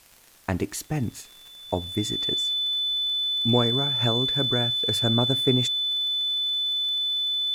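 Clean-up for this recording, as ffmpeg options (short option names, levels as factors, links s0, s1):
-af "adeclick=t=4,bandreject=f=3500:w=30,agate=range=0.0891:threshold=0.01"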